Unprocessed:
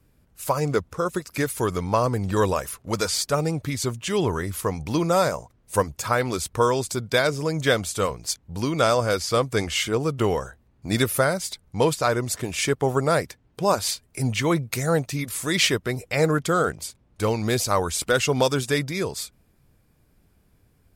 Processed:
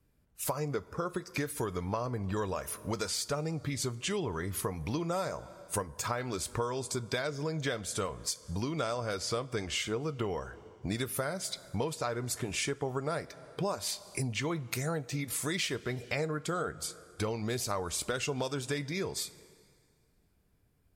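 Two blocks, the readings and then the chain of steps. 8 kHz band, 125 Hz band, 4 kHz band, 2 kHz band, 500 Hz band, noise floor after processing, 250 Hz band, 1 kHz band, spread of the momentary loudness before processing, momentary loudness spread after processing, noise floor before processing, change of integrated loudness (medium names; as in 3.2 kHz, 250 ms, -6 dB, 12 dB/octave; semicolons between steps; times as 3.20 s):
-7.5 dB, -9.5 dB, -9.5 dB, -11.0 dB, -12.0 dB, -69 dBFS, -10.0 dB, -12.0 dB, 7 LU, 4 LU, -62 dBFS, -10.5 dB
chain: spectral noise reduction 10 dB; two-slope reverb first 0.23 s, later 1.9 s, from -18 dB, DRR 13 dB; compression 6:1, threshold -31 dBFS, peak gain reduction 15.5 dB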